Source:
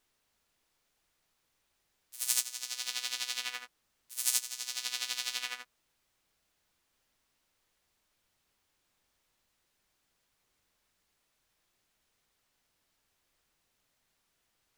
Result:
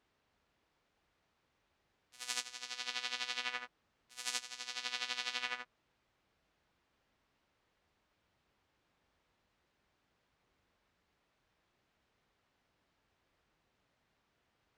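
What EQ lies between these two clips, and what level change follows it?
HPF 40 Hz; tape spacing loss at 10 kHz 24 dB; +5.5 dB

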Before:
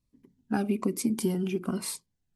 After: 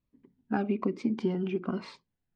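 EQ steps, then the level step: Bessel low-pass 3300 Hz, order 2; air absorption 180 m; low shelf 210 Hz -7.5 dB; +2.0 dB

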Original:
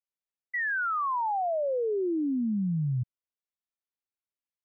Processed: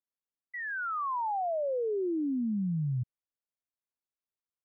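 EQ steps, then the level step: LPF 1500 Hz; -2.5 dB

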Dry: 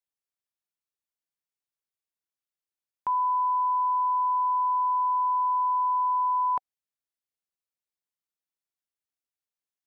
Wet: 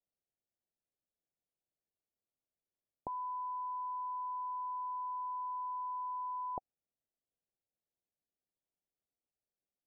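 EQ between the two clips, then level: steep low-pass 760 Hz 48 dB/oct; +4.5 dB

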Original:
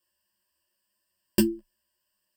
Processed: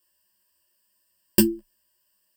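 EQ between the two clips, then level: high shelf 7500 Hz +8 dB; +3.0 dB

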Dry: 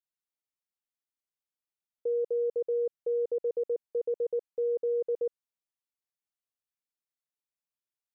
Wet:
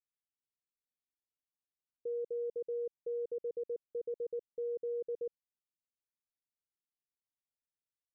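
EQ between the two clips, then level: Gaussian blur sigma 17 samples; -2.5 dB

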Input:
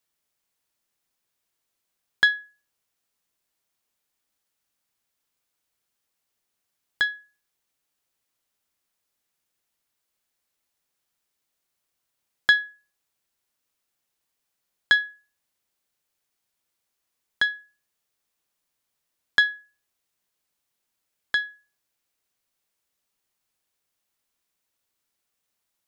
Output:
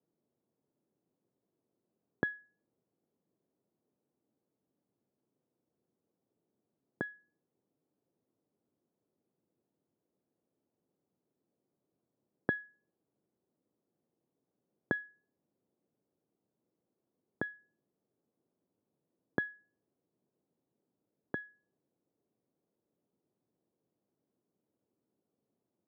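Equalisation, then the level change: Butterworth band-pass 210 Hz, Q 0.68; air absorption 500 m; low shelf 140 Hz -11.5 dB; +16.0 dB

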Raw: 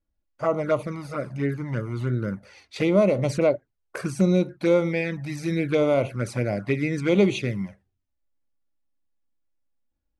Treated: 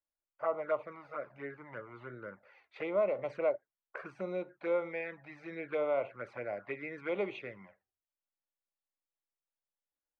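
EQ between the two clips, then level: air absorption 92 m; three-band isolator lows -22 dB, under 470 Hz, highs -24 dB, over 2600 Hz; -6.5 dB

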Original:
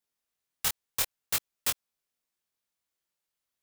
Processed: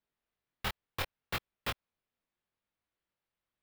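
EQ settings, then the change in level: air absorption 390 m; low shelf 190 Hz +4.5 dB; high shelf 7000 Hz +12 dB; +2.5 dB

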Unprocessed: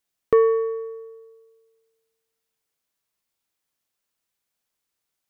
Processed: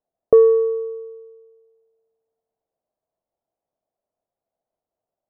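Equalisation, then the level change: synth low-pass 660 Hz, resonance Q 4.9; 0.0 dB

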